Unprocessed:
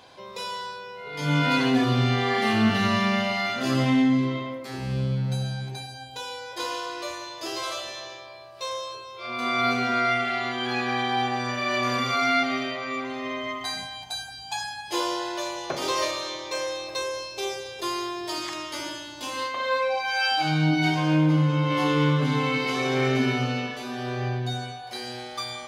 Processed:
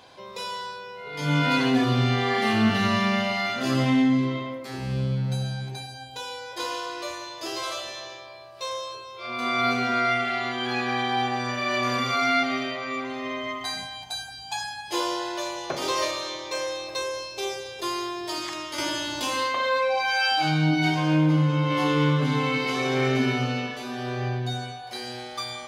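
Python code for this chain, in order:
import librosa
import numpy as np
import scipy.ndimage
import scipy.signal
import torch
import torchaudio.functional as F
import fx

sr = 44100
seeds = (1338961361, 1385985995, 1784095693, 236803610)

y = fx.env_flatten(x, sr, amount_pct=50, at=(18.78, 20.6))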